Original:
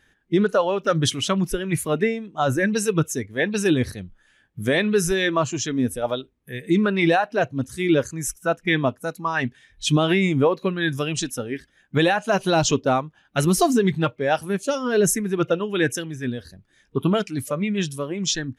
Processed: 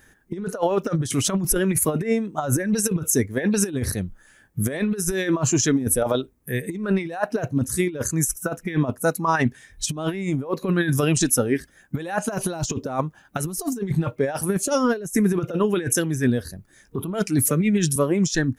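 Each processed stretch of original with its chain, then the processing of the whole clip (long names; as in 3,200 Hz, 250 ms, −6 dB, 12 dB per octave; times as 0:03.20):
0:17.45–0:17.96: flat-topped bell 790 Hz −15.5 dB 1.3 octaves + multiband upward and downward compressor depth 40%
whole clip: high-shelf EQ 7,800 Hz +11.5 dB; compressor whose output falls as the input rises −24 dBFS, ratio −0.5; parametric band 3,200 Hz −9.5 dB 1.1 octaves; level +3.5 dB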